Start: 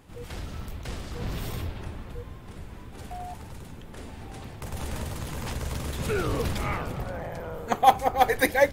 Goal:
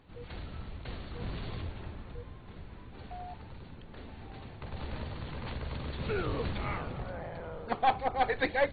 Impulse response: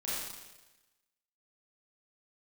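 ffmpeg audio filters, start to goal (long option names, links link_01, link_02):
-af "aeval=exprs='(tanh(5.01*val(0)+0.35)-tanh(0.35))/5.01':channel_layout=same,volume=-4.5dB" -ar 32000 -c:a ac3 -b:a 32k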